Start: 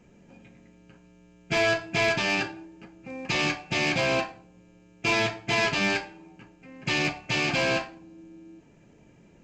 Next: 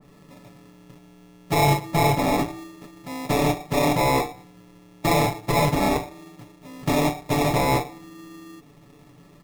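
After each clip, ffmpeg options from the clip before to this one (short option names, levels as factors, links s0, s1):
-af "acrusher=samples=29:mix=1:aa=0.000001,aecho=1:1:6.9:0.65,adynamicequalizer=threshold=0.01:dfrequency=2000:dqfactor=0.7:tfrequency=2000:tqfactor=0.7:attack=5:release=100:ratio=0.375:range=2.5:mode=cutabove:tftype=highshelf,volume=1.5"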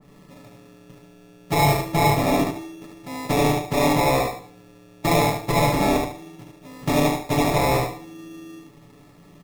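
-af "aecho=1:1:74|148|222|296:0.631|0.17|0.046|0.0124"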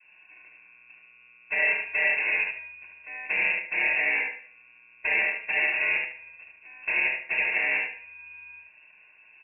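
-af "lowpass=f=2400:t=q:w=0.5098,lowpass=f=2400:t=q:w=0.6013,lowpass=f=2400:t=q:w=0.9,lowpass=f=2400:t=q:w=2.563,afreqshift=-2800,volume=0.501"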